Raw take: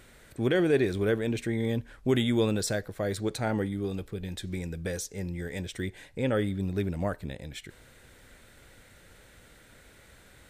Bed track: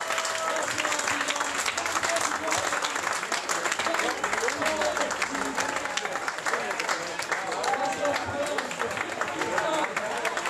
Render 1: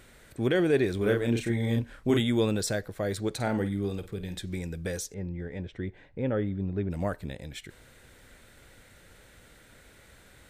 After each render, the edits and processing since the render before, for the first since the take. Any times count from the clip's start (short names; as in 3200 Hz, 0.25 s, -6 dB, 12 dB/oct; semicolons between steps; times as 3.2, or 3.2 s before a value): 0.98–2.2 doubler 34 ms -3 dB; 3.31–4.39 flutter echo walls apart 8.6 m, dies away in 0.26 s; 5.14–6.91 tape spacing loss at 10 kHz 34 dB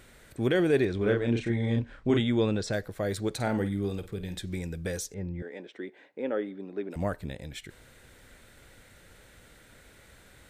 0.85–2.73 air absorption 100 m; 5.42–6.96 HPF 270 Hz 24 dB/oct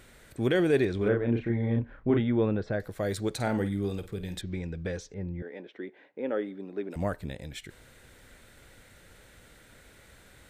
1.08–2.8 LPF 1800 Hz; 4.41–6.29 air absorption 160 m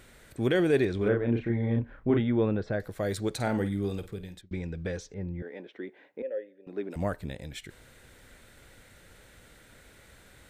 4.04–4.51 fade out; 6.22–6.67 vowel filter e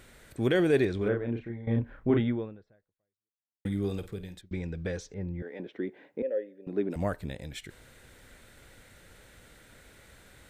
0.84–1.67 fade out, to -15 dB; 2.28–3.65 fade out exponential; 5.59–6.96 low shelf 320 Hz +11.5 dB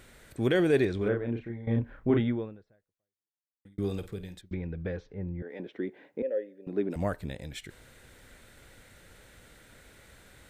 2.48–3.78 fade out; 4.54–5.5 air absorption 350 m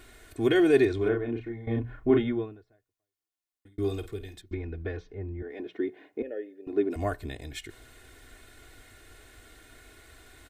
notches 60/120/180 Hz; comb 2.8 ms, depth 79%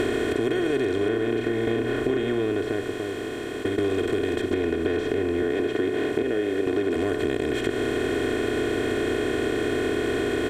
per-bin compression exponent 0.2; compressor, threshold -21 dBFS, peak gain reduction 9.5 dB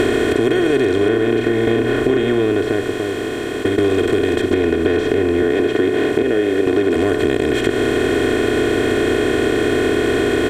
gain +8.5 dB; limiter -3 dBFS, peak gain reduction 0.5 dB